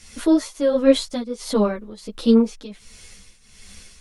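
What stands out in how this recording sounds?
a quantiser's noise floor 12-bit, dither none; tremolo triangle 1.4 Hz, depth 85%; a shimmering, thickened sound

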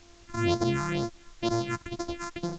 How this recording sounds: a buzz of ramps at a fixed pitch in blocks of 128 samples; phasing stages 4, 2.1 Hz, lowest notch 500–2800 Hz; a quantiser's noise floor 10-bit, dither triangular; A-law

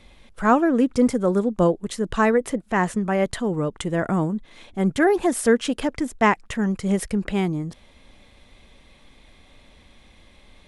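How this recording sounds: noise floor -54 dBFS; spectral tilt -6.0 dB/octave

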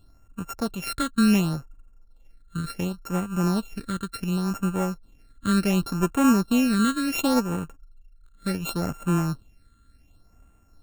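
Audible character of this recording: a buzz of ramps at a fixed pitch in blocks of 32 samples; phasing stages 8, 0.69 Hz, lowest notch 740–4600 Hz

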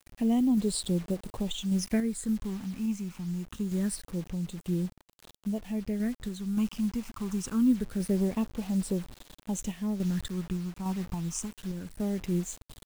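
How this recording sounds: phasing stages 8, 0.25 Hz, lowest notch 500–2000 Hz; a quantiser's noise floor 8-bit, dither none; random-step tremolo

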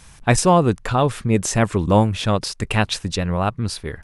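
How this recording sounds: noise floor -47 dBFS; spectral tilt -5.0 dB/octave

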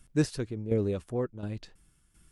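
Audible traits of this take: tremolo saw down 1.4 Hz, depth 65%

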